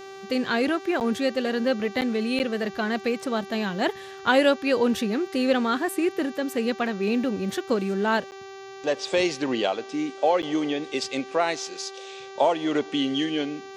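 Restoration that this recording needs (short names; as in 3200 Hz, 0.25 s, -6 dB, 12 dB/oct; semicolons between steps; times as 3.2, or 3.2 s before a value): de-hum 388.9 Hz, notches 18; interpolate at 1/2.01/2.39/8.31/10.42, 9.1 ms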